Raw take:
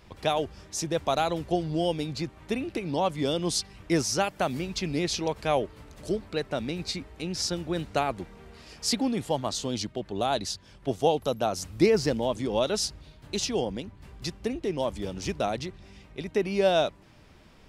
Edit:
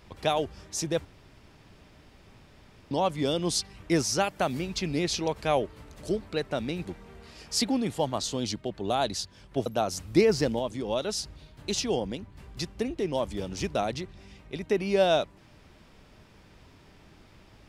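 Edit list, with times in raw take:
1.05–2.91 room tone
6.85–8.16 cut
10.97–11.31 cut
12.24–12.88 gain -3.5 dB

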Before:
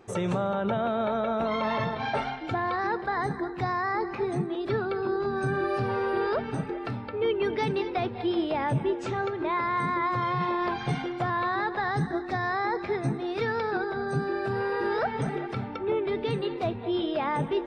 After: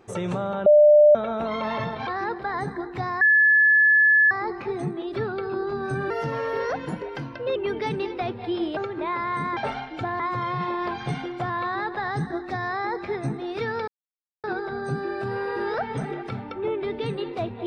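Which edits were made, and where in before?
0.66–1.15 bleep 597 Hz -10 dBFS
2.07–2.7 move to 10
3.84 add tone 1720 Hz -13.5 dBFS 1.10 s
5.63–7.32 speed 116%
8.53–9.2 cut
13.68 insert silence 0.56 s

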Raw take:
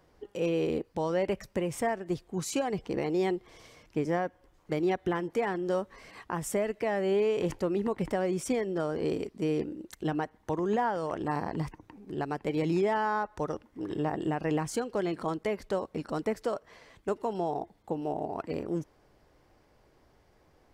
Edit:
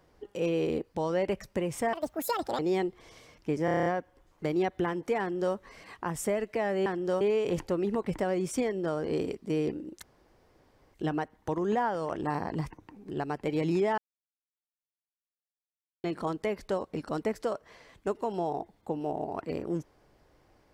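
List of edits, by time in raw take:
1.93–3.07 speed 173%
4.13 stutter 0.03 s, 8 plays
5.47–5.82 copy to 7.13
9.95 insert room tone 0.91 s
12.99–15.05 mute

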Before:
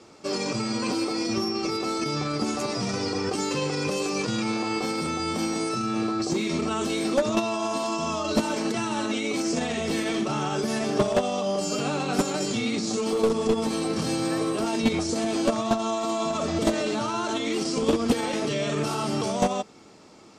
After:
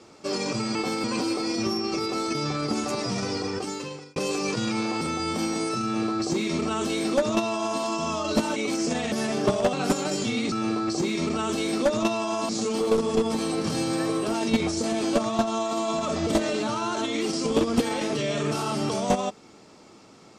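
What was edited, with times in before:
2.72–3.87 fade out equal-power
4.72–5.01 move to 0.75
5.84–7.81 copy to 12.81
8.56–9.22 cut
9.78–10.64 cut
11.25–12.02 cut

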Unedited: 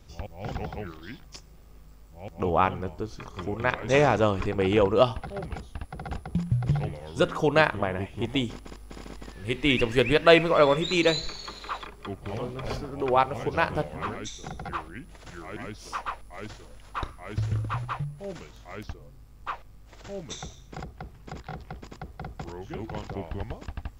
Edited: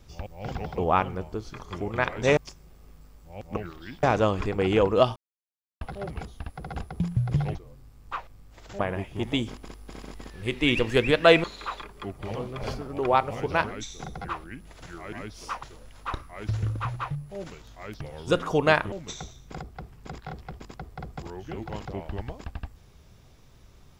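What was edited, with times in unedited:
0.78–1.24 swap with 2.44–4.03
5.16 insert silence 0.65 s
6.9–7.81 swap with 18.9–20.14
10.46–11.47 cut
13.67–14.08 cut
16.07–16.52 cut

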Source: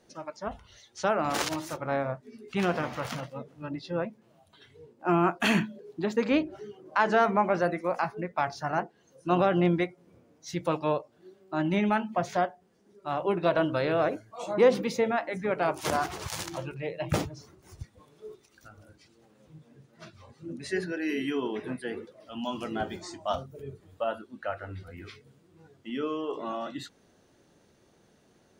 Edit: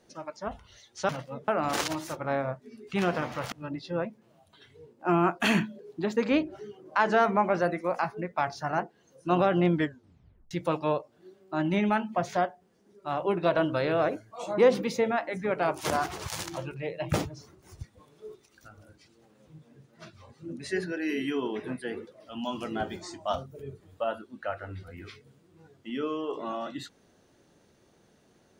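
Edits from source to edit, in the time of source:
3.13–3.52 move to 1.09
9.73 tape stop 0.78 s

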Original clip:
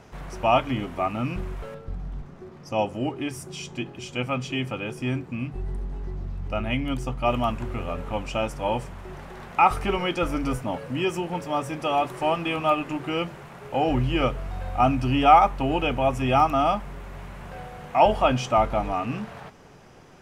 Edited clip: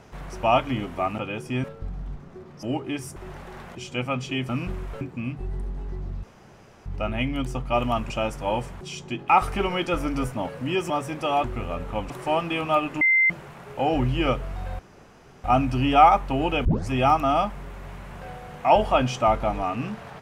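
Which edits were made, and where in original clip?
1.18–1.7 swap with 4.7–5.16
2.69–2.95 cut
3.48–3.96 swap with 8.99–9.58
6.38 insert room tone 0.63 s
7.62–8.28 move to 12.05
11.19–11.51 cut
12.96–13.25 bleep 2080 Hz -15.5 dBFS
14.74 insert room tone 0.65 s
15.95 tape start 0.25 s

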